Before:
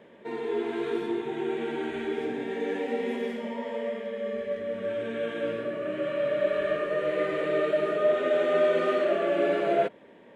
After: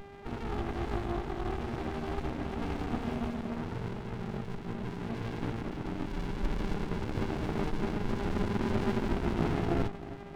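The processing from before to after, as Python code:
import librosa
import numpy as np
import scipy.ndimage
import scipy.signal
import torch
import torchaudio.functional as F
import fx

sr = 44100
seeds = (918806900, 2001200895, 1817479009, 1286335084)

y = fx.dmg_buzz(x, sr, base_hz=400.0, harmonics=4, level_db=-43.0, tilt_db=-8, odd_only=False)
y = fx.echo_feedback(y, sr, ms=315, feedback_pct=54, wet_db=-17.5)
y = fx.running_max(y, sr, window=65)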